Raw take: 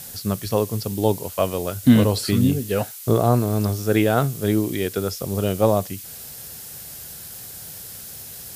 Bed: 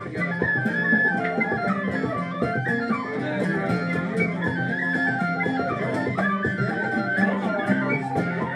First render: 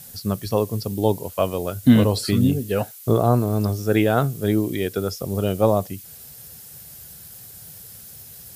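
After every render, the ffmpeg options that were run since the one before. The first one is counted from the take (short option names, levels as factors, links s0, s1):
-af "afftdn=nr=7:nf=-38"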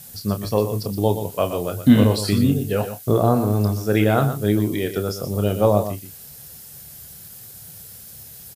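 -filter_complex "[0:a]asplit=2[s0][s1];[s1]adelay=29,volume=0.355[s2];[s0][s2]amix=inputs=2:normalize=0,aecho=1:1:121:0.316"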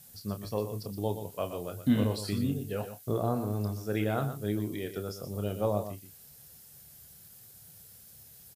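-af "volume=0.237"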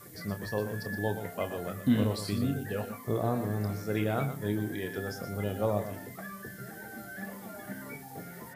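-filter_complex "[1:a]volume=0.106[s0];[0:a][s0]amix=inputs=2:normalize=0"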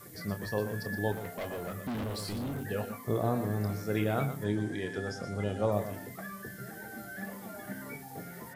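-filter_complex "[0:a]asettb=1/sr,asplit=3[s0][s1][s2];[s0]atrim=end=1.124[s3];[s1]atrim=start=1.12:end=2.64,asetpts=PTS-STARTPTS,afade=t=in:d=0.004:c=qsin,afade=t=out:st=1.516:d=0.004:c=qsin,asoftclip=type=hard:threshold=0.0224[s4];[s2]atrim=start=2.636[s5];[s3][s4]acrossfade=d=0.004:c1=hsin:c2=qsin[s6];[s6][s5]acrossfade=d=0.004:c1=qsin:c2=hsin,asettb=1/sr,asplit=3[s7][s8][s9];[s7]atrim=end=4.444[s10];[s8]atrim=start=4.44:end=5.72,asetpts=PTS-STARTPTS,afade=t=in:d=0.004:c=qsin,afade=t=out:st=1.276:d=0.004:c=qsin,lowpass=f=9000:w=0.5412,lowpass=f=9000:w=1.3066[s11];[s9]atrim=start=5.716[s12];[s10][s11]acrossfade=d=0.004:c1=hsin:c2=qsin[s13];[s13][s12]acrossfade=d=0.004:c1=qsin:c2=hsin"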